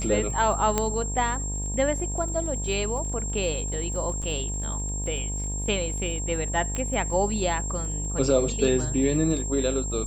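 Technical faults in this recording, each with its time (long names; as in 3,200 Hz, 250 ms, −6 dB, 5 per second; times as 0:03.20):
mains buzz 50 Hz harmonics 21 −31 dBFS
surface crackle 21 per second −35 dBFS
whistle 7,500 Hz −32 dBFS
0:00.78: click −9 dBFS
0:04.22–0:04.23: drop-out 5.8 ms
0:06.75: click −17 dBFS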